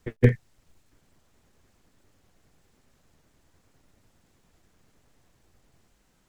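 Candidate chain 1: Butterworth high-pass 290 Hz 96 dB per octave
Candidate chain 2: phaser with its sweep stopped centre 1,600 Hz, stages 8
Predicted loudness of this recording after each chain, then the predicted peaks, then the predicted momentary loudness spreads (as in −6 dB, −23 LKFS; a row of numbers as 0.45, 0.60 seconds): −30.5, −27.5 LKFS; −10.5, −7.5 dBFS; 12, 10 LU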